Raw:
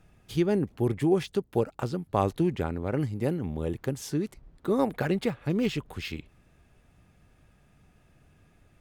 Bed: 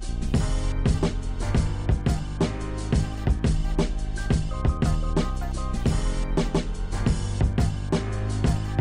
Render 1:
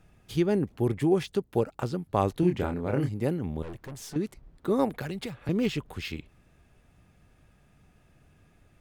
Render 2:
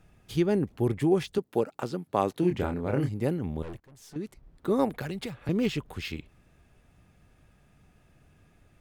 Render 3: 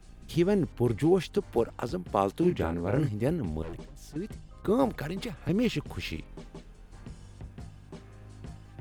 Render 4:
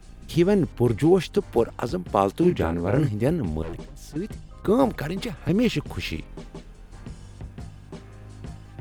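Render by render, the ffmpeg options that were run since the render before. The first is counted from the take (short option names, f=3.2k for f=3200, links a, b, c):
-filter_complex "[0:a]asettb=1/sr,asplit=3[a][b][c];[a]atrim=end=2.404[d];[b]atrim=start=2.4:end=3.09,asetpts=PTS-STARTPTS,afade=t=in:d=0.004:c=qsin,afade=t=out:st=0.686:d=0.004:c=qsin,asplit=2[e][f];[f]adelay=28,volume=-5dB[g];[e][g]amix=inputs=2:normalize=0,atrim=end_sample=30429[h];[c]atrim=start=3.086[i];[d][h]acrossfade=d=0.004:c1=hsin:c2=qsin[j];[j][i]acrossfade=d=0.004:c1=qsin:c2=hsin,asettb=1/sr,asplit=3[k][l][m];[k]atrim=end=3.624[n];[l]atrim=start=3.62:end=4.16,asetpts=PTS-STARTPTS,afade=t=in:d=0.004:c=qsin,afade=t=out:st=0.536:d=0.004:c=qsin,aeval=exprs='(tanh(70.8*val(0)+0.3)-tanh(0.3))/70.8':c=same[o];[m]atrim=start=4.156[p];[n][o]acrossfade=d=0.004:c1=hsin:c2=qsin[q];[q][p]acrossfade=d=0.004:c1=qsin:c2=hsin,asettb=1/sr,asplit=3[r][s][t];[r]atrim=end=4.934[u];[s]atrim=start=4.93:end=5.49,asetpts=PTS-STARTPTS,afade=t=in:d=0.004:c=qsin,afade=t=out:st=0.556:d=0.004:c=qsin,acrossover=split=120|3000[v][w][x];[w]acompressor=threshold=-33dB:ratio=6:attack=3.2:release=140:knee=2.83:detection=peak[y];[v][y][x]amix=inputs=3:normalize=0[z];[t]atrim=start=5.486[aa];[u][z]acrossfade=d=0.004:c1=hsin:c2=qsin[ab];[ab][aa]acrossfade=d=0.004:c1=qsin:c2=hsin"
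-filter_complex "[0:a]asettb=1/sr,asplit=3[a][b][c];[a]atrim=end=1.384[d];[b]atrim=start=1.38:end=2.51,asetpts=PTS-STARTPTS,afade=t=in:d=0.004:c=qsin,afade=t=out:st=1.126:d=0.004:c=qsin,highpass=180[e];[c]atrim=start=2.506[f];[d][e]acrossfade=d=0.004:c1=hsin:c2=qsin[g];[g][f]acrossfade=d=0.004:c1=qsin:c2=hsin,asplit=2[h][i];[h]atrim=end=3.8,asetpts=PTS-STARTPTS,afade=t=out:st=3.796:d=0.004:c=hsin:silence=0.0944061[j];[i]atrim=start=3.8,asetpts=PTS-STARTPTS,afade=t=in:d=0.87:silence=0.0944061[k];[j][k]concat=n=2:v=0:a=1"
-filter_complex "[1:a]volume=-21.5dB[a];[0:a][a]amix=inputs=2:normalize=0"
-af "volume=5.5dB"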